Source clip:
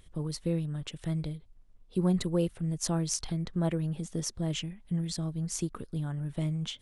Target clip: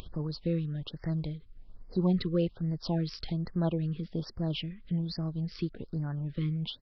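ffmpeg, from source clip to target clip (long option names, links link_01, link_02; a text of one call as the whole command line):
ffmpeg -i in.wav -af "aresample=11025,aresample=44100,acompressor=mode=upward:threshold=-34dB:ratio=2.5,afftfilt=real='re*(1-between(b*sr/1024,710*pow(3200/710,0.5+0.5*sin(2*PI*1.2*pts/sr))/1.41,710*pow(3200/710,0.5+0.5*sin(2*PI*1.2*pts/sr))*1.41))':imag='im*(1-between(b*sr/1024,710*pow(3200/710,0.5+0.5*sin(2*PI*1.2*pts/sr))/1.41,710*pow(3200/710,0.5+0.5*sin(2*PI*1.2*pts/sr))*1.41))':win_size=1024:overlap=0.75" out.wav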